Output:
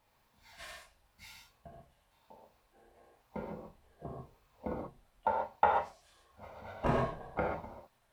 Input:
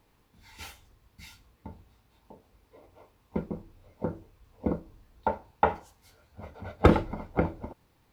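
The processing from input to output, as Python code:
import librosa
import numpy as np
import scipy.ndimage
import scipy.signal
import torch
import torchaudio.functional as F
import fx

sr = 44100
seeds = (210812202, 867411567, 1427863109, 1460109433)

y = fx.pitch_trill(x, sr, semitones=-4.5, every_ms=526)
y = fx.low_shelf_res(y, sr, hz=490.0, db=-7.0, q=1.5)
y = fx.rev_gated(y, sr, seeds[0], gate_ms=160, shape='flat', drr_db=-2.0)
y = F.gain(torch.from_numpy(y), -6.0).numpy()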